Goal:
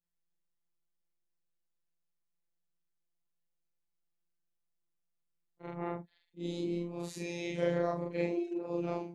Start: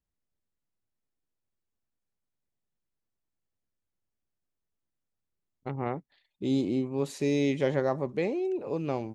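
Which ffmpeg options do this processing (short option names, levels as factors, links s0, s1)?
-af "afftfilt=real='re':imag='-im':win_size=4096:overlap=0.75,afftfilt=real='hypot(re,im)*cos(PI*b)':imag='0':win_size=1024:overlap=0.75,volume=1.41"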